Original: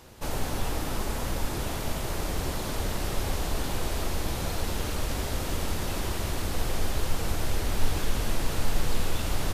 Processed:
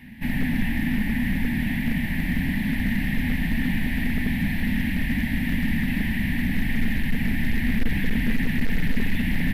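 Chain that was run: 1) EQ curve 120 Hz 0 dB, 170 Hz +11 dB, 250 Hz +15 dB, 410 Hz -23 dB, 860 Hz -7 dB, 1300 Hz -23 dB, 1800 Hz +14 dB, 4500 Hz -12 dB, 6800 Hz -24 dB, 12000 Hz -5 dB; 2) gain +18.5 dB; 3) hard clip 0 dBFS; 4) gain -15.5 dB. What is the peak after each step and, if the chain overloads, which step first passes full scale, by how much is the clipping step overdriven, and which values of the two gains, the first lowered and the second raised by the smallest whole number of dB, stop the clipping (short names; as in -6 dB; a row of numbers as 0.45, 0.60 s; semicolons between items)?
-9.0, +9.5, 0.0, -15.5 dBFS; step 2, 9.5 dB; step 2 +8.5 dB, step 4 -5.5 dB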